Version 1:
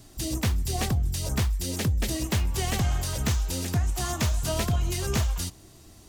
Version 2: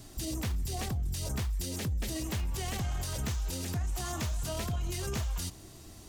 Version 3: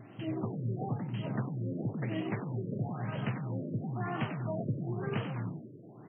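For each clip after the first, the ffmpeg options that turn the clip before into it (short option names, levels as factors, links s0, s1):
-af "alimiter=level_in=1.58:limit=0.0631:level=0:latency=1:release=42,volume=0.631,volume=1.12"
-filter_complex "[0:a]asplit=6[s0][s1][s2][s3][s4][s5];[s1]adelay=93,afreqshift=65,volume=0.422[s6];[s2]adelay=186,afreqshift=130,volume=0.168[s7];[s3]adelay=279,afreqshift=195,volume=0.0676[s8];[s4]adelay=372,afreqshift=260,volume=0.0269[s9];[s5]adelay=465,afreqshift=325,volume=0.0108[s10];[s0][s6][s7][s8][s9][s10]amix=inputs=6:normalize=0,afftfilt=real='re*between(b*sr/4096,100,7600)':imag='im*between(b*sr/4096,100,7600)':win_size=4096:overlap=0.75,afftfilt=real='re*lt(b*sr/1024,600*pow(3300/600,0.5+0.5*sin(2*PI*0.99*pts/sr)))':imag='im*lt(b*sr/1024,600*pow(3300/600,0.5+0.5*sin(2*PI*0.99*pts/sr)))':win_size=1024:overlap=0.75,volume=1.26"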